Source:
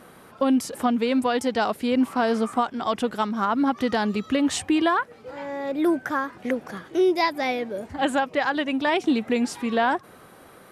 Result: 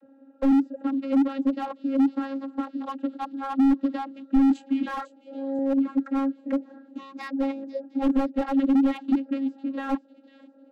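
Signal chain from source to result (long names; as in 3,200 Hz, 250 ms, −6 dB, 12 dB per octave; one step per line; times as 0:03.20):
adaptive Wiener filter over 41 samples
notch filter 5,400 Hz, Q 5.7
in parallel at −0.5 dB: brickwall limiter −21 dBFS, peak gain reduction 9 dB
on the sum: channel vocoder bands 32, saw 272 Hz
0:04.32–0:05.59: double-tracking delay 27 ms −6 dB
on a send: delay with a high-pass on its return 500 ms, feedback 31%, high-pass 3,800 Hz, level −11 dB
on the sum: slew-rate limiting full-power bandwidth 41 Hz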